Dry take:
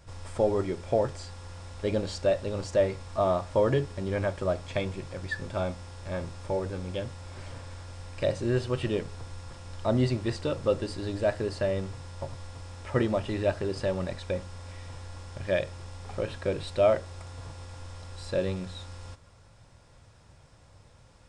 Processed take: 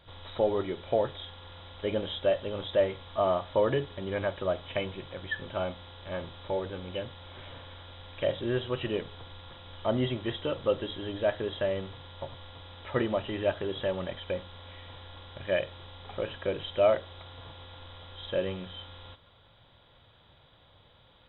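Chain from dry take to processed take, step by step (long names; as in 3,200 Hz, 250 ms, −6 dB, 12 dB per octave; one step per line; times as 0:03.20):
hearing-aid frequency compression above 2,900 Hz 4 to 1
low-shelf EQ 210 Hz −8.5 dB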